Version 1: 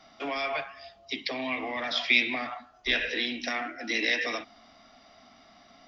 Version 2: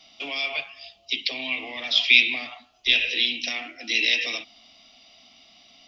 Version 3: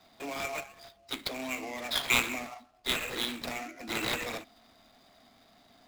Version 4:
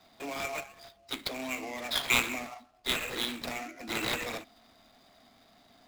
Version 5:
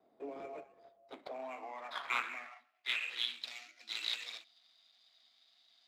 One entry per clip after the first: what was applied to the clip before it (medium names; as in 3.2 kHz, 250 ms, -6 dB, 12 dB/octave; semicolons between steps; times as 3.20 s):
resonant high shelf 2.1 kHz +9 dB, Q 3; trim -4 dB
median filter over 15 samples
no audible change
band-pass sweep 420 Hz -> 3.9 kHz, 0.69–3.54 s